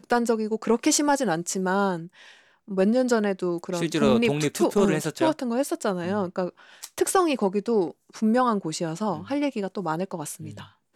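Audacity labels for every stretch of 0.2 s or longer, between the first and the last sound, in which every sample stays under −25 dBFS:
1.970000	2.710000	silence
6.480000	6.840000	silence
7.880000	8.220000	silence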